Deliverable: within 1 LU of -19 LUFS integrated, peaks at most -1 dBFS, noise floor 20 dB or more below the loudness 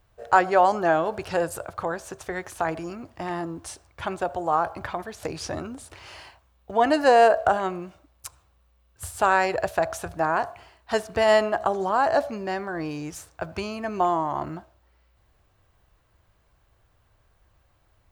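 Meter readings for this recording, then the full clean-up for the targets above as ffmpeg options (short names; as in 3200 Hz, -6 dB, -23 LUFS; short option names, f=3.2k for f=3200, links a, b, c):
loudness -24.5 LUFS; peak -4.0 dBFS; loudness target -19.0 LUFS
-> -af "volume=5.5dB,alimiter=limit=-1dB:level=0:latency=1"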